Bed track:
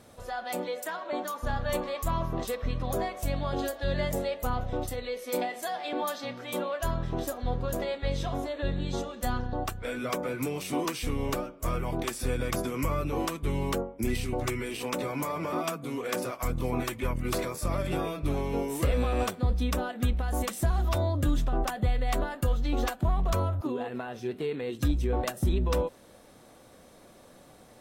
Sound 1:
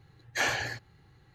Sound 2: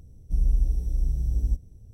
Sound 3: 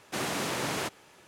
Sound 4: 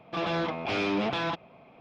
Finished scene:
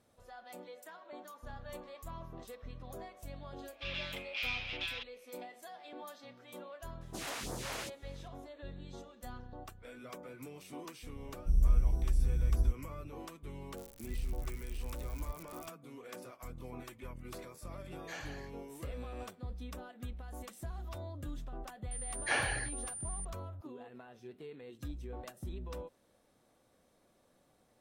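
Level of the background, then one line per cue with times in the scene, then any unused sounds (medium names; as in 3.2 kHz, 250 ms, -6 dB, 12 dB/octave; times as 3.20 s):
bed track -16.5 dB
3.68 s: add 4 -8 dB + resonant high-pass 2.6 kHz, resonance Q 2.1
7.01 s: add 3 -8 dB + phase shifter stages 2, 2.4 Hz, lowest notch 140–2700 Hz
11.16 s: add 2 -4.5 dB
13.77 s: add 2 -16 dB + zero-crossing glitches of -19 dBFS
17.72 s: add 1 -17.5 dB
21.91 s: add 1 -3.5 dB + class-D stage that switches slowly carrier 9.2 kHz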